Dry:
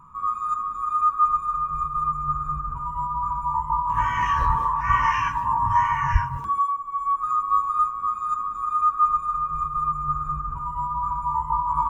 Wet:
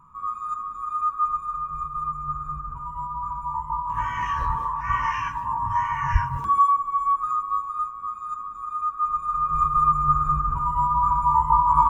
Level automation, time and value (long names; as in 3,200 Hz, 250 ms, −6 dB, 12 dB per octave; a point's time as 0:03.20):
0:05.87 −4 dB
0:06.76 +6.5 dB
0:07.64 −6 dB
0:08.99 −6 dB
0:09.62 +5.5 dB